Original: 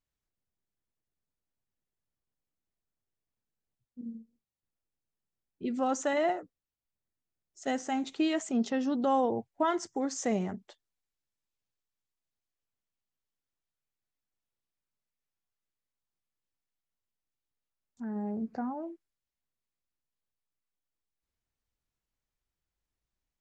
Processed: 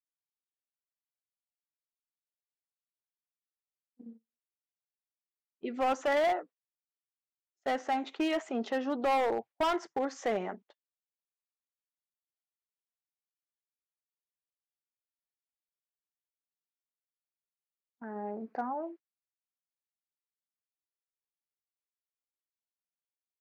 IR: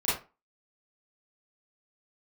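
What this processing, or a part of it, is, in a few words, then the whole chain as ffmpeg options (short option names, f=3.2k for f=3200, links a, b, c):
walkie-talkie: -af "highpass=460,lowpass=2.6k,asoftclip=type=hard:threshold=-29.5dB,agate=range=-24dB:threshold=-53dB:ratio=16:detection=peak,volume=5dB"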